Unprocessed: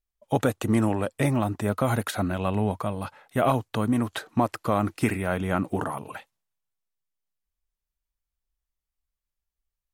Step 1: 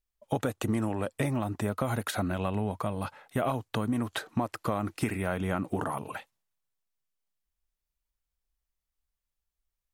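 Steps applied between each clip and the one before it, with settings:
downward compressor 4 to 1, threshold −26 dBFS, peak gain reduction 8.5 dB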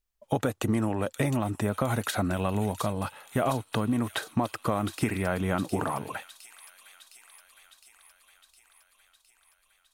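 delay with a high-pass on its return 711 ms, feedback 67%, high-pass 3,800 Hz, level −5 dB
level +2.5 dB

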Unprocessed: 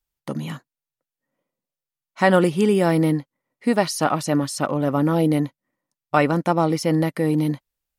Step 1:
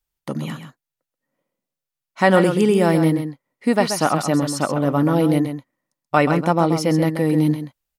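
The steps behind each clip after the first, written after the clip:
single-tap delay 131 ms −8.5 dB
level +1.5 dB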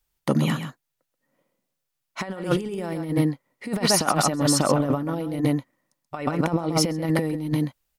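compressor whose output falls as the input rises −22 dBFS, ratio −0.5

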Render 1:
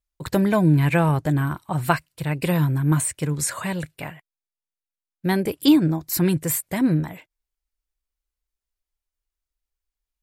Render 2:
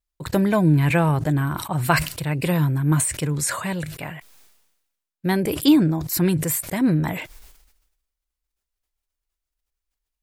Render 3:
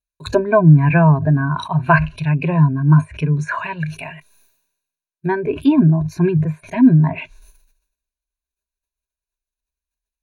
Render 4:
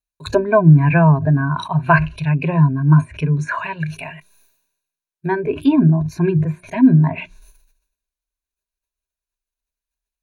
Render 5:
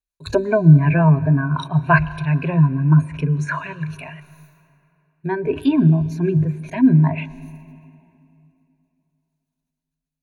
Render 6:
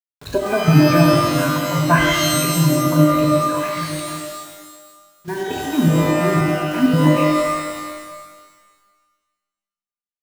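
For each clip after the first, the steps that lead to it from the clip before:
level that may fall only so fast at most 55 dB per second
treble cut that deepens with the level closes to 1,600 Hz, closed at −19.5 dBFS; noise reduction from a noise print of the clip's start 11 dB; EQ curve with evenly spaced ripples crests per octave 1.5, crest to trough 14 dB; level +4 dB
mains-hum notches 60/120/180/240/300/360 Hz
rotating-speaker cabinet horn 5.5 Hz, later 0.8 Hz, at 0:02.73; convolution reverb RT60 2.9 s, pre-delay 106 ms, DRR 18 dB
bit reduction 6 bits; gate pattern "x.xxx.xx.xx.xx.x" 199 BPM −12 dB; reverb with rising layers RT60 1.4 s, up +12 semitones, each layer −2 dB, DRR 0.5 dB; level −3 dB

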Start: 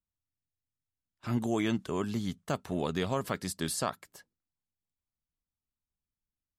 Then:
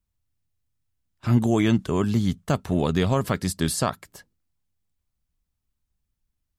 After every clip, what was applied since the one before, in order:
low-shelf EQ 150 Hz +11.5 dB
level +6.5 dB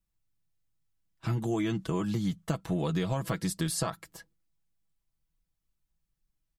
comb filter 6.1 ms, depth 74%
downward compressor, threshold −22 dBFS, peak gain reduction 8 dB
level −4.5 dB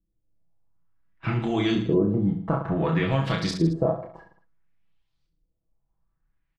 auto-filter low-pass saw up 0.57 Hz 340–4,800 Hz
reverse bouncing-ball delay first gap 30 ms, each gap 1.2×, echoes 5
level +4 dB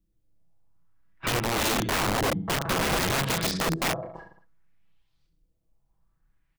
in parallel at +2 dB: downward compressor 5 to 1, threshold −32 dBFS, peak gain reduction 14 dB
on the sum: wrap-around overflow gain 17.5 dB
level −3 dB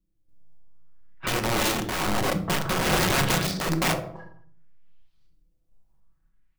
sample-and-hold tremolo
convolution reverb RT60 0.50 s, pre-delay 5 ms, DRR 7 dB
level +2.5 dB

